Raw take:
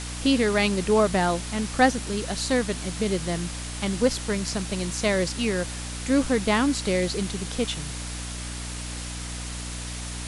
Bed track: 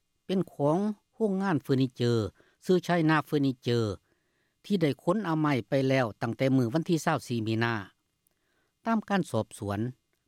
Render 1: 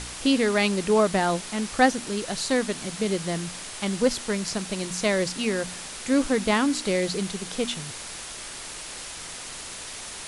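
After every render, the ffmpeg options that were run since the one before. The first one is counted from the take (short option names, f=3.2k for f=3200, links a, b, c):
-af "bandreject=f=60:t=h:w=4,bandreject=f=120:t=h:w=4,bandreject=f=180:t=h:w=4,bandreject=f=240:t=h:w=4,bandreject=f=300:t=h:w=4"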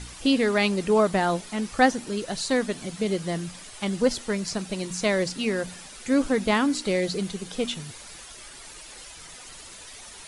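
-af "afftdn=nr=10:nf=-38"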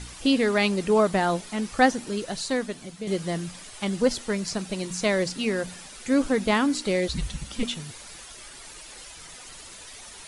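-filter_complex "[0:a]asettb=1/sr,asplit=3[a][b][c];[a]atrim=end=7.084[d];[b]atrim=start=7.08:end=7.63,asetpts=PTS-STARTPTS,afade=t=in:d=0.004:c=qsin,afade=t=out:st=0.546:d=0.004:c=qsin,afreqshift=-240[e];[c]atrim=start=7.626[f];[d][e]acrossfade=d=0.004:c1=hsin:c2=qsin[g];[g][f]acrossfade=d=0.004:c1=qsin:c2=hsin,asplit=2[h][i];[h]atrim=end=3.07,asetpts=PTS-STARTPTS,afade=t=out:st=2.16:d=0.91:silence=0.375837[j];[i]atrim=start=3.07,asetpts=PTS-STARTPTS,afade=t=in:d=0.004:c=hsin:silence=0.375837[k];[j][k]concat=n=2:v=0:a=1"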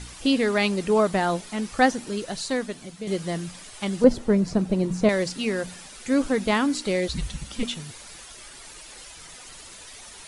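-filter_complex "[0:a]asettb=1/sr,asplit=3[a][b][c];[a]atrim=end=4.044[d];[b]atrim=start=4.04:end=5.09,asetpts=PTS-STARTPTS,afade=t=in:d=0.004:c=qsin,afade=t=out:st=1.046:d=0.004:c=qsin,tiltshelf=f=1.1k:g=9.5[e];[c]atrim=start=5.086[f];[d][e]acrossfade=d=0.004:c1=hsin:c2=qsin[g];[g][f]acrossfade=d=0.004:c1=qsin:c2=hsin"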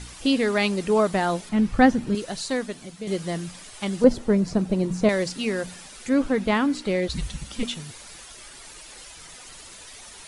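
-filter_complex "[0:a]asettb=1/sr,asplit=3[a][b][c];[a]atrim=end=1.494[d];[b]atrim=start=1.49:end=2.15,asetpts=PTS-STARTPTS,afade=t=in:d=0.004:c=qsin,afade=t=out:st=0.656:d=0.004:c=qsin,bass=f=250:g=14,treble=f=4k:g=-9[e];[c]atrim=start=2.146[f];[d][e]acrossfade=d=0.004:c1=hsin:c2=qsin[g];[g][f]acrossfade=d=0.004:c1=qsin:c2=hsin,asettb=1/sr,asplit=3[h][i][j];[h]atrim=end=6.094[k];[i]atrim=start=6.09:end=7.1,asetpts=PTS-STARTPTS,afade=t=in:d=0.004:c=qsin,afade=t=out:st=1.006:d=0.004:c=qsin,bass=f=250:g=2,treble=f=4k:g=-8[l];[j]atrim=start=7.096[m];[k][l]acrossfade=d=0.004:c1=hsin:c2=qsin[n];[n][m]acrossfade=d=0.004:c1=qsin:c2=hsin"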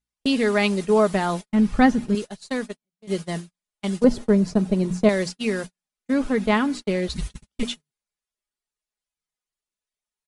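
-af "agate=range=-50dB:threshold=-29dB:ratio=16:detection=peak,aecho=1:1:4.8:0.36"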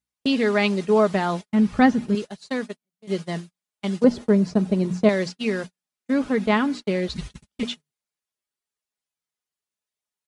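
-filter_complex "[0:a]acrossover=split=6700[a][b];[b]acompressor=threshold=-59dB:ratio=4:attack=1:release=60[c];[a][c]amix=inputs=2:normalize=0,highpass=73"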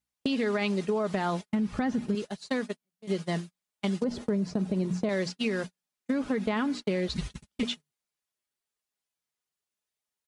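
-af "alimiter=limit=-14.5dB:level=0:latency=1:release=45,acompressor=threshold=-25dB:ratio=6"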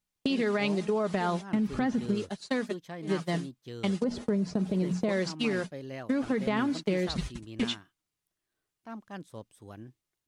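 -filter_complex "[1:a]volume=-15dB[a];[0:a][a]amix=inputs=2:normalize=0"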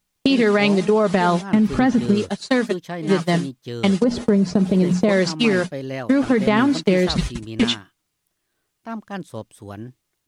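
-af "volume=11.5dB"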